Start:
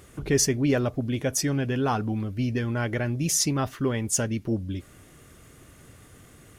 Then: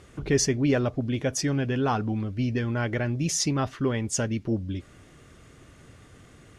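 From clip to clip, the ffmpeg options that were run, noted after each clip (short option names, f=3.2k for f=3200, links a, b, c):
-af "lowpass=6.5k"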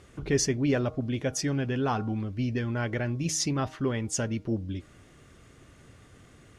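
-af "bandreject=f=156.1:t=h:w=4,bandreject=f=312.2:t=h:w=4,bandreject=f=468.3:t=h:w=4,bandreject=f=624.4:t=h:w=4,bandreject=f=780.5:t=h:w=4,bandreject=f=936.6:t=h:w=4,bandreject=f=1.0927k:t=h:w=4,bandreject=f=1.2488k:t=h:w=4,bandreject=f=1.4049k:t=h:w=4,volume=-2.5dB"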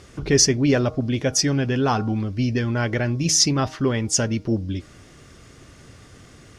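-af "equalizer=f=5.2k:t=o:w=0.6:g=7.5,volume=7dB"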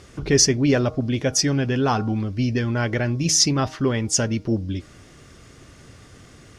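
-af anull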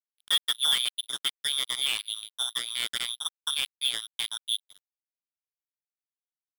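-af "lowpass=f=3.1k:t=q:w=0.5098,lowpass=f=3.1k:t=q:w=0.6013,lowpass=f=3.1k:t=q:w=0.9,lowpass=f=3.1k:t=q:w=2.563,afreqshift=-3700,acrusher=bits=2:mix=0:aa=0.5,volume=-7.5dB"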